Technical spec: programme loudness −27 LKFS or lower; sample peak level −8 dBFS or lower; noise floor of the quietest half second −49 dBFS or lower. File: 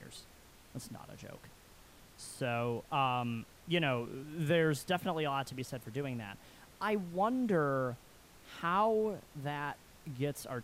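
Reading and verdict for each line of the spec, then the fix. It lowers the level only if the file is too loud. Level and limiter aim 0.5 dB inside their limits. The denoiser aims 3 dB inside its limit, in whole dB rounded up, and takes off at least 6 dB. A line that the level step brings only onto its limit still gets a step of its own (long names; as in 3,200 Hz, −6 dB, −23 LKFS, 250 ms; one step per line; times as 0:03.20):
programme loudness −35.0 LKFS: in spec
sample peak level −20.0 dBFS: in spec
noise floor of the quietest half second −59 dBFS: in spec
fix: no processing needed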